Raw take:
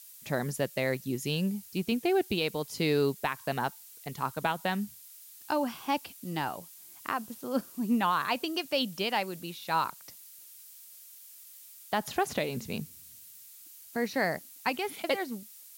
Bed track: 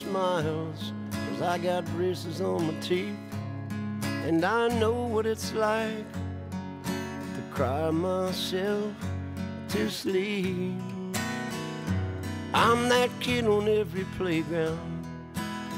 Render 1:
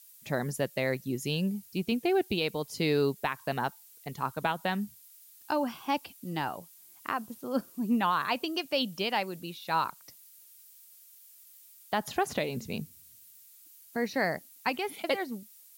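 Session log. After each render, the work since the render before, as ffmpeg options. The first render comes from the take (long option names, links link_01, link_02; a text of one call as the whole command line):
ffmpeg -i in.wav -af "afftdn=noise_reduction=6:noise_floor=-51" out.wav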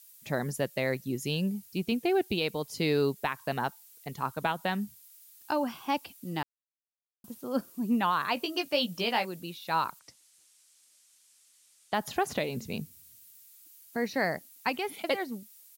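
ffmpeg -i in.wav -filter_complex "[0:a]asplit=3[link_01][link_02][link_03];[link_01]afade=type=out:start_time=8.36:duration=0.02[link_04];[link_02]asplit=2[link_05][link_06];[link_06]adelay=17,volume=-5dB[link_07];[link_05][link_07]amix=inputs=2:normalize=0,afade=type=in:start_time=8.36:duration=0.02,afade=type=out:start_time=9.25:duration=0.02[link_08];[link_03]afade=type=in:start_time=9.25:duration=0.02[link_09];[link_04][link_08][link_09]amix=inputs=3:normalize=0,asettb=1/sr,asplit=3[link_10][link_11][link_12];[link_10]atrim=end=9.994[link_13];[link_11]atrim=start=9.99:end=11.94,asetpts=PTS-STARTPTS,afade=type=in:duration=0.004:curve=qsin,afade=type=out:start_time=1.946:duration=0.004:curve=qsin,lowpass=frequency=9400:width=0.5412,lowpass=frequency=9400:width=1.3066[link_14];[link_12]atrim=start=11.936[link_15];[link_13][link_14]acrossfade=duration=0.004:curve1=hsin:curve2=qsin[link_16];[link_16][link_15]acrossfade=duration=0.004:curve1=qsin:curve2=hsin,asplit=3[link_17][link_18][link_19];[link_17]atrim=end=6.43,asetpts=PTS-STARTPTS,afade=type=out:start_time=6.426:duration=0.004:curve=hsin[link_20];[link_18]atrim=start=6.43:end=7.24,asetpts=PTS-STARTPTS,volume=0[link_21];[link_19]atrim=start=7.24,asetpts=PTS-STARTPTS,afade=type=in:duration=0.004:curve=hsin[link_22];[link_20][link_21][link_22]concat=n=3:v=0:a=1" out.wav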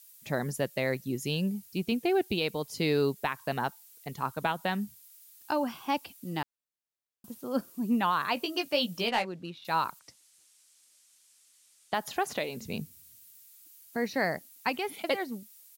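ffmpeg -i in.wav -filter_complex "[0:a]asettb=1/sr,asplit=3[link_01][link_02][link_03];[link_01]atrim=end=9.084[link_04];[link_02]atrim=start=9.08:end=9.65,asetpts=PTS-STARTPTS,afade=type=in:duration=0.004:curve=qsin,afade=type=out:start_time=0.566:duration=0.004:curve=qsin,adynamicsmooth=sensitivity=7:basefreq=3200[link_05];[link_03]atrim=start=9.646[link_06];[link_04][link_05]acrossfade=duration=0.004:curve1=hsin:curve2=qsin[link_07];[link_07][link_06]acrossfade=duration=0.004:curve1=qsin:curve2=hsin,asettb=1/sr,asplit=3[link_08][link_09][link_10];[link_08]atrim=end=11.944[link_11];[link_09]atrim=start=11.94:end=12.61,asetpts=PTS-STARTPTS,afade=type=in:duration=0.004:curve=qsin,afade=type=out:start_time=0.666:duration=0.004:curve=qsin,lowshelf=frequency=210:gain=-11.5[link_12];[link_10]atrim=start=12.606[link_13];[link_11][link_12]acrossfade=duration=0.004:curve1=hsin:curve2=qsin[link_14];[link_14][link_13]acrossfade=duration=0.004:curve1=qsin:curve2=hsin" out.wav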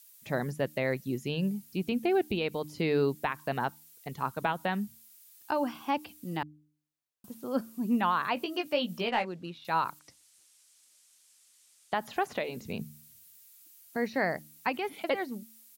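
ffmpeg -i in.wav -filter_complex "[0:a]bandreject=frequency=75.35:width_type=h:width=4,bandreject=frequency=150.7:width_type=h:width=4,bandreject=frequency=226.05:width_type=h:width=4,bandreject=frequency=301.4:width_type=h:width=4,acrossover=split=3200[link_01][link_02];[link_02]acompressor=threshold=-50dB:ratio=4:attack=1:release=60[link_03];[link_01][link_03]amix=inputs=2:normalize=0" out.wav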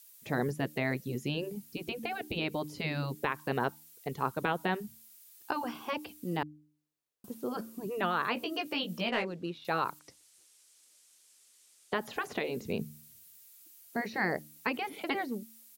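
ffmpeg -i in.wav -af "equalizer=frequency=420:width_type=o:width=0.86:gain=8,afftfilt=real='re*lt(hypot(re,im),0.282)':imag='im*lt(hypot(re,im),0.282)':win_size=1024:overlap=0.75" out.wav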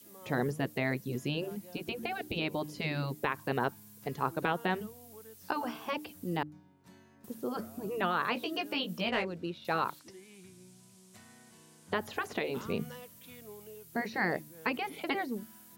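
ffmpeg -i in.wav -i bed.wav -filter_complex "[1:a]volume=-25.5dB[link_01];[0:a][link_01]amix=inputs=2:normalize=0" out.wav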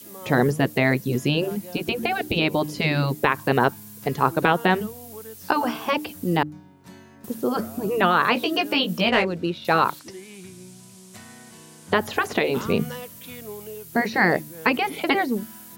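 ffmpeg -i in.wav -af "volume=12dB" out.wav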